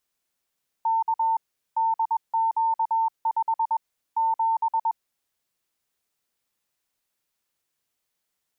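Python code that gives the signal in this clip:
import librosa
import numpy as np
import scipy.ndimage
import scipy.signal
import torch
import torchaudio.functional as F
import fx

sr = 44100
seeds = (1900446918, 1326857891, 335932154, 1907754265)

y = fx.morse(sr, text='K DQ5 7', wpm=21, hz=901.0, level_db=-19.5)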